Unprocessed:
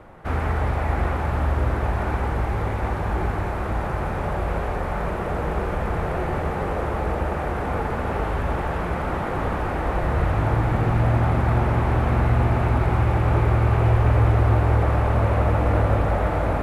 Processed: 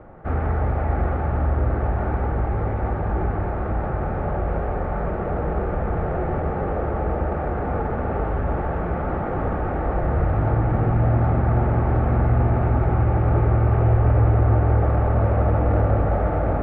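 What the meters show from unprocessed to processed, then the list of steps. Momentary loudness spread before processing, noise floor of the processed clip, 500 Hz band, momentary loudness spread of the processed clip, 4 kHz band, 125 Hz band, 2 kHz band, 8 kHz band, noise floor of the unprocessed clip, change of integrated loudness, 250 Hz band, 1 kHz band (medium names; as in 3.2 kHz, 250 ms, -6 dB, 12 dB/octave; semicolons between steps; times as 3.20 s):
7 LU, -26 dBFS, +1.0 dB, 7 LU, under -10 dB, +1.0 dB, -4.5 dB, no reading, -27 dBFS, +0.5 dB, +1.0 dB, -1.0 dB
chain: low-pass 1.3 kHz 12 dB/octave; band-stop 1 kHz, Q 6.5; in parallel at -10.5 dB: saturation -24.5 dBFS, distortion -7 dB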